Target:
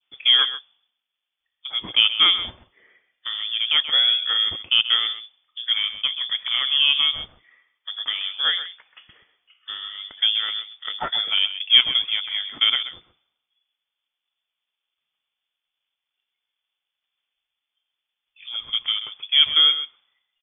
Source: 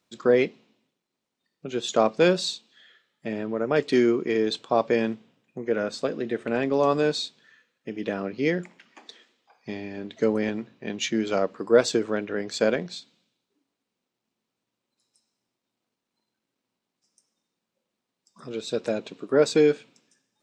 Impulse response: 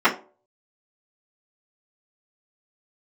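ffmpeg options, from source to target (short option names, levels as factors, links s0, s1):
-filter_complex "[0:a]adynamicequalizer=threshold=0.0126:dfrequency=1700:dqfactor=1.2:tfrequency=1700:tqfactor=1.2:attack=5:release=100:ratio=0.375:range=2:mode=cutabove:tftype=bell,adynamicsmooth=sensitivity=2.5:basefreq=1900,aemphasis=mode=production:type=bsi,lowpass=f=3100:t=q:w=0.5098,lowpass=f=3100:t=q:w=0.6013,lowpass=f=3100:t=q:w=0.9,lowpass=f=3100:t=q:w=2.563,afreqshift=-3700,asplit=2[s0][s1];[s1]aecho=0:1:131:0.251[s2];[s0][s2]amix=inputs=2:normalize=0,volume=1.68"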